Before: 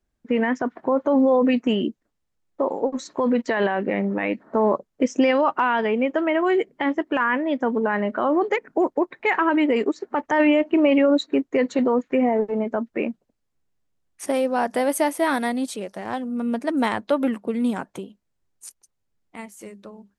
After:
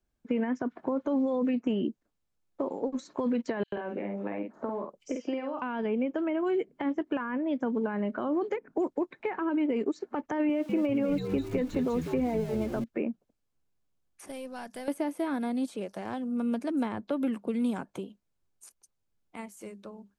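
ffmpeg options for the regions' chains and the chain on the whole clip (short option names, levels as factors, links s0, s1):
-filter_complex "[0:a]asettb=1/sr,asplit=3[s0][s1][s2];[s0]atrim=end=3.634[s3];[s1]atrim=start=3.63:end=5.62,asetpts=PTS-STARTPTS,afade=t=in:d=0.004:c=qsin,afade=t=out:st=1.986:d=0.004:c=qsin,acrossover=split=380|1200[s4][s5][s6];[s4]acompressor=threshold=0.0158:ratio=4[s7];[s5]acompressor=threshold=0.0355:ratio=4[s8];[s6]acompressor=threshold=0.00891:ratio=4[s9];[s7][s8][s9]amix=inputs=3:normalize=0,asplit=2[s10][s11];[s11]adelay=49,volume=0.562[s12];[s10][s12]amix=inputs=2:normalize=0,atrim=end_sample=87759,acrossover=split=4500[s13][s14];[s13]adelay=90[s15];[s15][s14]amix=inputs=2:normalize=0,atrim=end_sample=87759[s16];[s2]atrim=start=5.616[s17];[s3][s16]acrossfade=d=0.004:c1=hsin:c2=qsin[s18];[s18][s17]acrossfade=d=0.004:c1=qsin:c2=hsin,asettb=1/sr,asplit=3[s19][s20][s21];[s19]atrim=end=10.494[s22];[s20]atrim=start=10.49:end=12.84,asetpts=PTS-STARTPTS,afade=t=in:d=0.004:c=qsin,afade=t=out:st=2.346:d=0.004:c=qsin,aeval=exprs='val(0)+0.5*0.02*sgn(val(0))':c=same,highpass=f=180:p=1,asplit=6[s23][s24][s25][s26][s27][s28];[s24]adelay=198,afreqshift=-88,volume=0.299[s29];[s25]adelay=396,afreqshift=-176,volume=0.138[s30];[s26]adelay=594,afreqshift=-264,volume=0.0631[s31];[s27]adelay=792,afreqshift=-352,volume=0.0292[s32];[s28]adelay=990,afreqshift=-440,volume=0.0133[s33];[s23][s29][s30][s31][s32][s33]amix=inputs=6:normalize=0,atrim=end_sample=103635[s34];[s21]atrim=start=12.836[s35];[s22][s34]acrossfade=d=0.004:c1=hsin:c2=qsin[s36];[s36][s35]acrossfade=d=0.004:c1=qsin:c2=hsin,asettb=1/sr,asplit=3[s37][s38][s39];[s37]atrim=end=14.284[s40];[s38]atrim=start=14.28:end=14.88,asetpts=PTS-STARTPTS,afade=t=in:d=0.004:c=qsin,afade=t=out:st=0.596:d=0.004:c=qsin,equalizer=f=570:w=0.3:g=-14,aeval=exprs='(tanh(17.8*val(0)+0.3)-tanh(0.3))/17.8':c=same[s41];[s39]atrim=start=14.876[s42];[s40][s41]acrossfade=d=0.004:c1=hsin:c2=qsin[s43];[s43][s42]acrossfade=d=0.004:c1=qsin:c2=hsin,acrossover=split=2700[s44][s45];[s45]acompressor=threshold=0.01:ratio=4:attack=1:release=60[s46];[s44][s46]amix=inputs=2:normalize=0,bandreject=f=1900:w=11,acrossover=split=390|1700[s47][s48][s49];[s47]acompressor=threshold=0.0708:ratio=4[s50];[s48]acompressor=threshold=0.02:ratio=4[s51];[s49]acompressor=threshold=0.00562:ratio=4[s52];[s50][s51][s52]amix=inputs=3:normalize=0,volume=0.668"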